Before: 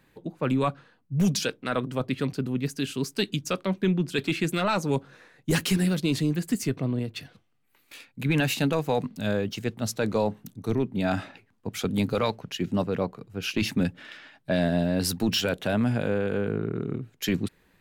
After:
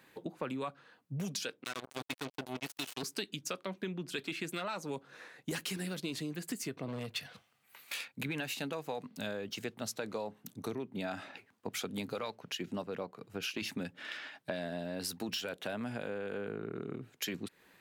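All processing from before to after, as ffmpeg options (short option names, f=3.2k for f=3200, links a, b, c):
-filter_complex "[0:a]asettb=1/sr,asplit=3[a][b][c];[a]atrim=end=1.644[d];[b]atrim=start=1.64:end=3.03,asetpts=PTS-STARTPTS,afade=t=in:d=0.004:c=qsin,afade=t=out:st=1.386:d=0.004:c=qsin,equalizer=f=620:w=0.57:g=-14,aecho=1:1:2.7:0.62,atrim=end_sample=61299,acrusher=bits=4:mix=0:aa=0.5[e];[c]atrim=start=3.026[f];[d][e]acrossfade=d=0.004:c1=hsin:c2=qsin[g];[g][f]acrossfade=d=0.004:c1=qsin:c2=hsin,asettb=1/sr,asplit=3[h][i][j];[h]atrim=end=6.884[k];[i]atrim=start=6.88:end=8.08,asetpts=PTS-STARTPTS,afade=t=in:d=0.004:c=qsin,afade=t=out:st=1.196:d=0.004:c=qsin,equalizer=f=320:w=2.1:g=-11.5,acontrast=63,asoftclip=type=hard:threshold=-23.5dB[l];[j]atrim=start=8.076[m];[k][l]acrossfade=d=0.004:c1=hsin:c2=qsin[n];[n][m]acrossfade=d=0.004:c1=qsin:c2=hsin,highpass=f=410:p=1,acompressor=threshold=-39dB:ratio=6,volume=3dB"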